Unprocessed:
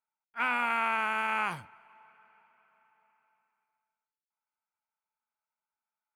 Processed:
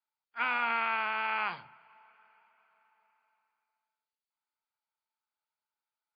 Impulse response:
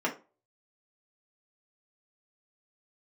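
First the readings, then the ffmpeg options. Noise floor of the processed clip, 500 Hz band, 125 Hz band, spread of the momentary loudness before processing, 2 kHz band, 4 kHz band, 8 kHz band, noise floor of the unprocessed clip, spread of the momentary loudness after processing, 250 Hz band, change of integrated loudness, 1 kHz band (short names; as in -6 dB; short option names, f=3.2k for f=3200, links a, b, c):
under -85 dBFS, -2.5 dB, -10.5 dB, 12 LU, -1.5 dB, +0.5 dB, under -20 dB, under -85 dBFS, 12 LU, -6.5 dB, -1.5 dB, -1.5 dB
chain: -filter_complex "[0:a]aemphasis=mode=production:type=bsi,asplit=2[a][b];[1:a]atrim=start_sample=2205,asetrate=22491,aresample=44100[c];[b][c]afir=irnorm=-1:irlink=0,volume=-25dB[d];[a][d]amix=inputs=2:normalize=0,volume=-2.5dB" -ar 11025 -c:a libmp3lame -b:a 32k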